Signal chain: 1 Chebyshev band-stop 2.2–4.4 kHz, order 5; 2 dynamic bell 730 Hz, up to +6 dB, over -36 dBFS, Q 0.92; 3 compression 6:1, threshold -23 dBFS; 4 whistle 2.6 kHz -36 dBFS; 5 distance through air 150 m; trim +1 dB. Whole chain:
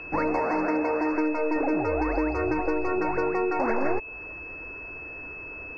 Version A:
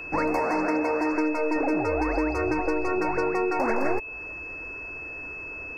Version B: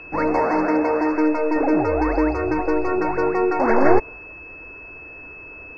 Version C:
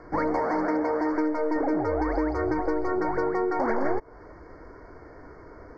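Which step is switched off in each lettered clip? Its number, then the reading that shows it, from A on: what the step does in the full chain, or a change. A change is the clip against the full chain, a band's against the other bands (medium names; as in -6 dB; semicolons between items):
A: 5, 2 kHz band +1.5 dB; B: 3, mean gain reduction 4.5 dB; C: 4, 2 kHz band -4.0 dB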